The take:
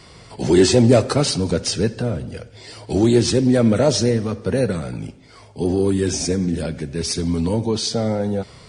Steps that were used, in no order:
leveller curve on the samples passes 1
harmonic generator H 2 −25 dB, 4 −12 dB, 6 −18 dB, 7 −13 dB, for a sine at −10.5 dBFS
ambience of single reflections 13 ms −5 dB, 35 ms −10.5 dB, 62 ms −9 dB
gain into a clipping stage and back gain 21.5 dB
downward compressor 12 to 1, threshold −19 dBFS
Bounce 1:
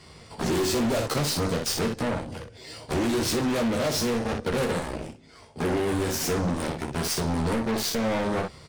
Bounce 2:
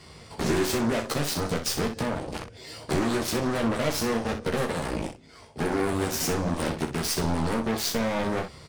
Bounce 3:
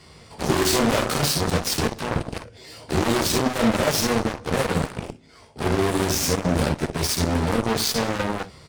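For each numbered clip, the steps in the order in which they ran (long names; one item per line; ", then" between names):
harmonic generator, then leveller curve on the samples, then ambience of single reflections, then downward compressor, then gain into a clipping stage and back
leveller curve on the samples, then downward compressor, then harmonic generator, then gain into a clipping stage and back, then ambience of single reflections
leveller curve on the samples, then gain into a clipping stage and back, then downward compressor, then ambience of single reflections, then harmonic generator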